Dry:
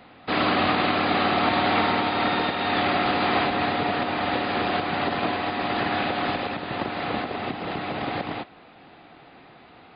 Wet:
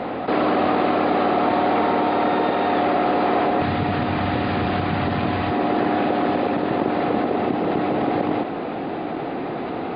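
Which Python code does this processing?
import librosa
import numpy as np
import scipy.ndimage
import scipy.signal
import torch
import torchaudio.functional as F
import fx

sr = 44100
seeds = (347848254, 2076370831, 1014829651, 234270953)

y = fx.lowpass(x, sr, hz=3100.0, slope=6)
y = fx.peak_eq(y, sr, hz=fx.steps((0.0, 460.0), (3.62, 93.0), (5.51, 360.0)), db=13.0, octaves=2.6)
y = fx.env_flatten(y, sr, amount_pct=70)
y = y * 10.0 ** (-7.5 / 20.0)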